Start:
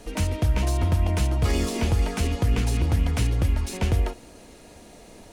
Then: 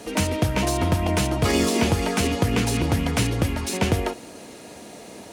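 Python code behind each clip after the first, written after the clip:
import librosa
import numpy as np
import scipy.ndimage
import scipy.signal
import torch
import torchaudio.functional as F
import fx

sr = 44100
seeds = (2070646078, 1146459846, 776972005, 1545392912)

y = scipy.signal.sosfilt(scipy.signal.butter(2, 140.0, 'highpass', fs=sr, output='sos'), x)
y = y * librosa.db_to_amplitude(7.0)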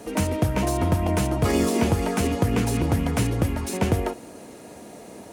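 y = fx.peak_eq(x, sr, hz=3800.0, db=-7.5, octaves=2.1)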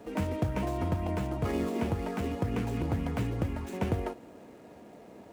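y = scipy.signal.medfilt(x, 9)
y = fx.rider(y, sr, range_db=10, speed_s=2.0)
y = y * librosa.db_to_amplitude(-8.5)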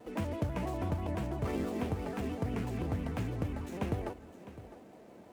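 y = x + 10.0 ** (-15.5 / 20.0) * np.pad(x, (int(657 * sr / 1000.0), 0))[:len(x)]
y = fx.vibrato_shape(y, sr, shape='square', rate_hz=6.1, depth_cents=100.0)
y = y * librosa.db_to_amplitude(-4.0)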